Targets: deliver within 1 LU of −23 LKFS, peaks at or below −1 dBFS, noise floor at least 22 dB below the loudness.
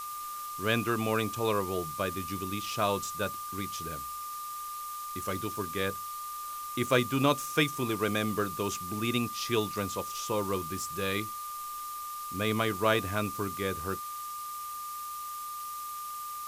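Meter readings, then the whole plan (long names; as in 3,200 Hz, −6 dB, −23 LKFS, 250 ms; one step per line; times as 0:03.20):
interfering tone 1,200 Hz; level of the tone −37 dBFS; background noise floor −39 dBFS; target noise floor −54 dBFS; integrated loudness −32.0 LKFS; sample peak −10.5 dBFS; target loudness −23.0 LKFS
→ notch filter 1,200 Hz, Q 30
broadband denoise 15 dB, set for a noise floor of −39 dBFS
level +9 dB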